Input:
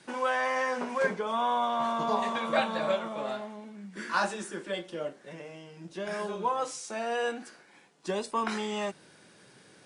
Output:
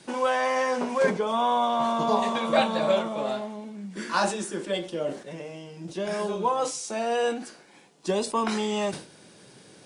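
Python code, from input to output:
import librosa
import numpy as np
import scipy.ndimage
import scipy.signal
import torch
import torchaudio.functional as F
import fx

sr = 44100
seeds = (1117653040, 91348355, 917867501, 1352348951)

y = fx.peak_eq(x, sr, hz=1600.0, db=-6.5, octaves=1.3)
y = fx.sustainer(y, sr, db_per_s=130.0)
y = F.gain(torch.from_numpy(y), 6.5).numpy()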